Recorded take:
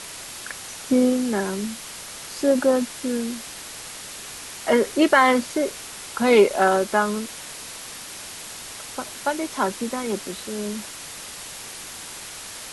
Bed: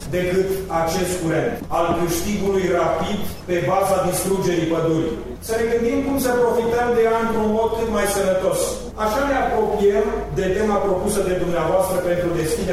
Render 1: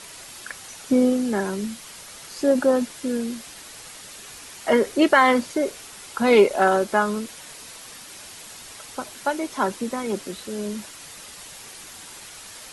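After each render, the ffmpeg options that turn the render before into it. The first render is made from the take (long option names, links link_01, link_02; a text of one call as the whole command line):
ffmpeg -i in.wav -af "afftdn=noise_reduction=6:noise_floor=-38" out.wav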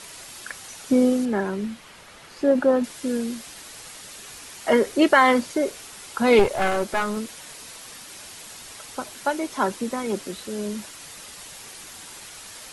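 ffmpeg -i in.wav -filter_complex "[0:a]asettb=1/sr,asplit=3[link_01][link_02][link_03];[link_01]atrim=end=1.254[link_04];[link_02]atrim=start=1.25:end=2.84,asetpts=PTS-STARTPTS,afade=type=in:duration=0.004:curve=qsin,afade=type=out:start_time=1.586:duration=0.004:curve=qsin,bass=frequency=250:gain=0,treble=frequency=4000:gain=-12[link_05];[link_03]atrim=start=2.836[link_06];[link_04][link_05]acrossfade=duration=0.004:curve1=hsin:curve2=qsin[link_07];[link_07][link_06]acrossfade=duration=0.004:curve1=qsin:curve2=hsin,asettb=1/sr,asplit=3[link_08][link_09][link_10];[link_08]atrim=end=6.394[link_11];[link_09]atrim=start=6.39:end=7.17,asetpts=PTS-STARTPTS,afade=type=in:duration=0.004:curve=qsin,afade=type=out:start_time=0.776:duration=0.004:curve=qsin,aeval=exprs='clip(val(0),-1,0.0562)':channel_layout=same[link_12];[link_10]atrim=start=7.166[link_13];[link_11][link_12]acrossfade=duration=0.004:curve1=hsin:curve2=qsin[link_14];[link_14][link_13]acrossfade=duration=0.004:curve1=qsin:curve2=hsin" out.wav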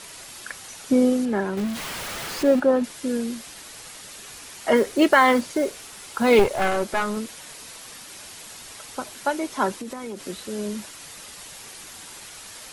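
ffmpeg -i in.wav -filter_complex "[0:a]asettb=1/sr,asplit=3[link_01][link_02][link_03];[link_01]atrim=end=1.574[link_04];[link_02]atrim=start=1.57:end=2.6,asetpts=PTS-STARTPTS,afade=type=in:duration=0.004:curve=qsin,afade=type=out:start_time=1.026:duration=0.004:curve=qsin,aeval=exprs='val(0)+0.5*0.0398*sgn(val(0))':channel_layout=same[link_05];[link_03]atrim=start=2.596[link_06];[link_04][link_05]acrossfade=duration=0.004:curve1=hsin:curve2=qsin[link_07];[link_07][link_06]acrossfade=duration=0.004:curve1=qsin:curve2=hsin,asettb=1/sr,asplit=3[link_08][link_09][link_10];[link_08]atrim=end=4.764[link_11];[link_09]atrim=start=4.76:end=6.66,asetpts=PTS-STARTPTS,afade=type=in:duration=0.004:curve=qsin,afade=type=out:start_time=1.896:duration=0.004:curve=qsin,acrusher=bits=7:mode=log:mix=0:aa=0.000001[link_12];[link_10]atrim=start=6.656[link_13];[link_11][link_12]acrossfade=duration=0.004:curve1=hsin:curve2=qsin[link_14];[link_14][link_13]acrossfade=duration=0.004:curve1=qsin:curve2=hsin,asettb=1/sr,asplit=3[link_15][link_16][link_17];[link_15]atrim=end=9.744[link_18];[link_16]atrim=start=9.74:end=10.25,asetpts=PTS-STARTPTS,afade=type=in:duration=0.004:curve=qsin,afade=type=out:start_time=0.506:duration=0.004:curve=qsin,acompressor=threshold=-29dB:ratio=12:attack=3.2:release=140:knee=1:detection=peak[link_19];[link_17]atrim=start=10.246[link_20];[link_18][link_19]acrossfade=duration=0.004:curve1=hsin:curve2=qsin[link_21];[link_21][link_20]acrossfade=duration=0.004:curve1=qsin:curve2=hsin" out.wav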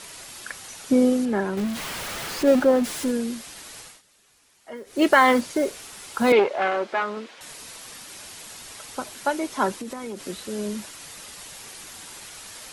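ffmpeg -i in.wav -filter_complex "[0:a]asettb=1/sr,asplit=3[link_01][link_02][link_03];[link_01]atrim=end=2.474[link_04];[link_02]atrim=start=2.47:end=3.11,asetpts=PTS-STARTPTS,afade=type=in:duration=0.004:curve=qsin,afade=type=out:start_time=0.636:duration=0.004:curve=qsin,aeval=exprs='val(0)+0.5*0.0316*sgn(val(0))':channel_layout=same[link_05];[link_03]atrim=start=3.106[link_06];[link_04][link_05]acrossfade=duration=0.004:curve1=hsin:curve2=qsin[link_07];[link_07][link_06]acrossfade=duration=0.004:curve1=qsin:curve2=hsin,asettb=1/sr,asplit=3[link_08][link_09][link_10];[link_08]atrim=end=6.324[link_11];[link_09]atrim=start=6.32:end=7.41,asetpts=PTS-STARTPTS,afade=type=in:duration=0.004:curve=qsin,afade=type=out:start_time=1.086:duration=0.004:curve=qsin,highpass=340,lowpass=3300[link_12];[link_10]atrim=start=7.406[link_13];[link_11][link_12]acrossfade=duration=0.004:curve1=hsin:curve2=qsin[link_14];[link_14][link_13]acrossfade=duration=0.004:curve1=qsin:curve2=hsin,asplit=3[link_15][link_16][link_17];[link_15]atrim=end=4.02,asetpts=PTS-STARTPTS,afade=type=out:start_time=3.79:duration=0.23:silence=0.105925[link_18];[link_16]atrim=start=4.02:end=4.85,asetpts=PTS-STARTPTS,volume=-19.5dB[link_19];[link_17]atrim=start=4.85,asetpts=PTS-STARTPTS,afade=type=in:duration=0.23:silence=0.105925[link_20];[link_18][link_19][link_20]concat=n=3:v=0:a=1" out.wav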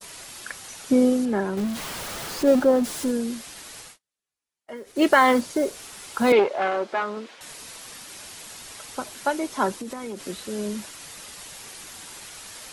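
ffmpeg -i in.wav -af "agate=range=-29dB:threshold=-46dB:ratio=16:detection=peak,adynamicequalizer=threshold=0.01:dfrequency=2200:dqfactor=1:tfrequency=2200:tqfactor=1:attack=5:release=100:ratio=0.375:range=2.5:mode=cutabove:tftype=bell" out.wav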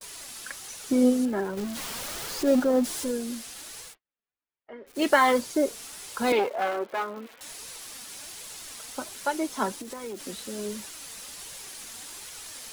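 ffmpeg -i in.wav -filter_complex "[0:a]acrossover=split=3300[link_01][link_02];[link_01]flanger=delay=1.7:depth=2.9:regen=46:speed=1.3:shape=triangular[link_03];[link_02]acrusher=bits=7:mix=0:aa=0.000001[link_04];[link_03][link_04]amix=inputs=2:normalize=0" out.wav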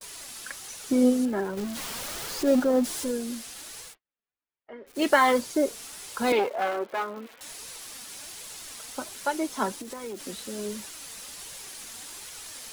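ffmpeg -i in.wav -af anull out.wav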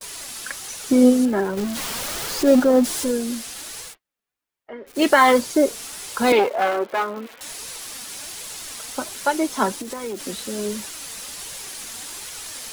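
ffmpeg -i in.wav -af "volume=7dB,alimiter=limit=-3dB:level=0:latency=1" out.wav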